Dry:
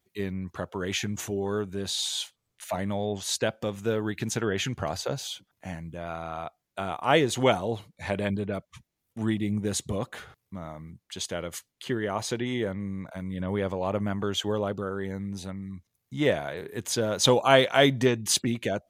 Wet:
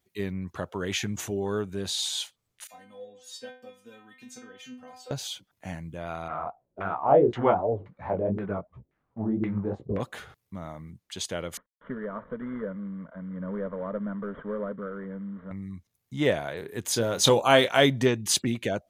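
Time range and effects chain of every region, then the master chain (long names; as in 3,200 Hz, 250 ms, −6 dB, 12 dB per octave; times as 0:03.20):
0:02.67–0:05.11: high-pass filter 120 Hz + stiff-string resonator 250 Hz, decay 0.43 s, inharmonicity 0.002
0:06.28–0:10.00: mu-law and A-law mismatch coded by mu + chorus effect 2.8 Hz, delay 15.5 ms, depth 7.2 ms + auto-filter low-pass saw down 1.9 Hz 370–1,900 Hz
0:11.57–0:15.51: variable-slope delta modulation 16 kbit/s + high-frequency loss of the air 440 metres + phaser with its sweep stopped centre 520 Hz, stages 8
0:16.85–0:17.81: high-shelf EQ 10,000 Hz +6 dB + double-tracking delay 26 ms −11 dB
whole clip: no processing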